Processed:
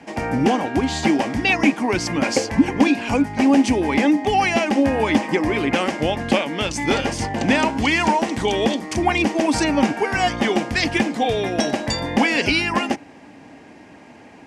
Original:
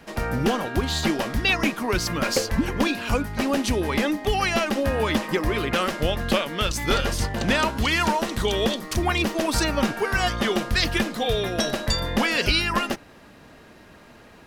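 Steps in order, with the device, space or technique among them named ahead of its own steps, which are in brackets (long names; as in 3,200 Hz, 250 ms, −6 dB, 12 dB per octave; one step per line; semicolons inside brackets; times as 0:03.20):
car door speaker (loudspeaker in its box 92–9,000 Hz, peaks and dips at 280 Hz +10 dB, 810 Hz +8 dB, 1,300 Hz −7 dB, 2,200 Hz +5 dB, 3,900 Hz −7 dB)
level +2 dB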